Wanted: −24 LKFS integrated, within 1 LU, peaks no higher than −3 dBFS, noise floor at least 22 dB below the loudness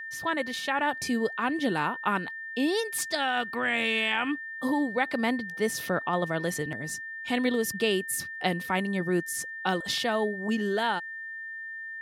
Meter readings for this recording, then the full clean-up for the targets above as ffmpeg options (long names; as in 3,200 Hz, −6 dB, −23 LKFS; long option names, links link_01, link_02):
interfering tone 1,800 Hz; level of the tone −36 dBFS; integrated loudness −28.5 LKFS; sample peak −12.5 dBFS; target loudness −24.0 LKFS
→ -af "bandreject=frequency=1800:width=30"
-af "volume=4.5dB"